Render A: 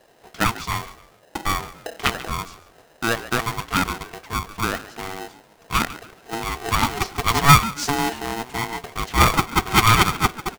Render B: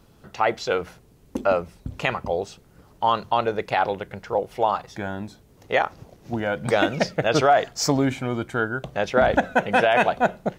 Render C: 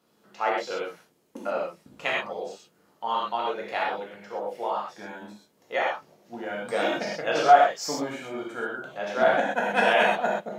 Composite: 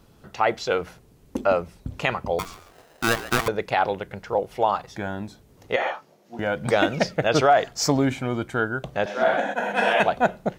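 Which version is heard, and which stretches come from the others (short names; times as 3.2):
B
2.39–3.48 from A
5.76–6.39 from C
9.06–10 from C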